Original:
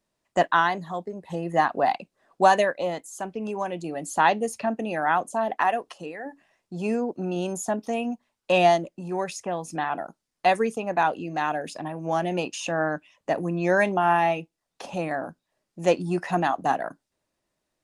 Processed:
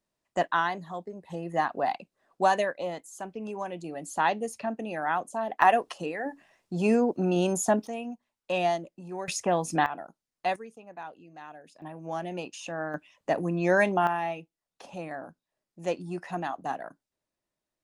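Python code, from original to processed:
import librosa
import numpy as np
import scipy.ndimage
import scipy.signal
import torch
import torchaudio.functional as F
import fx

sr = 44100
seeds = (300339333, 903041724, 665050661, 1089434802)

y = fx.gain(x, sr, db=fx.steps((0.0, -5.5), (5.62, 3.0), (7.87, -8.0), (9.28, 4.0), (9.86, -8.0), (10.56, -19.0), (11.82, -8.5), (12.94, -1.5), (14.07, -9.0)))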